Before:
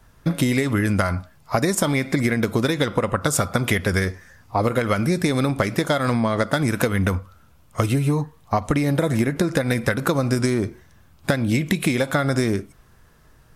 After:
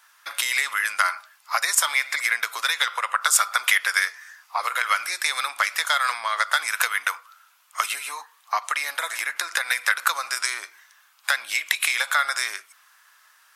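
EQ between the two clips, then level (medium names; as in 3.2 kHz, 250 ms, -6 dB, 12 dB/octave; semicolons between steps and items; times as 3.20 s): high-pass 1.1 kHz 24 dB/octave; +5.5 dB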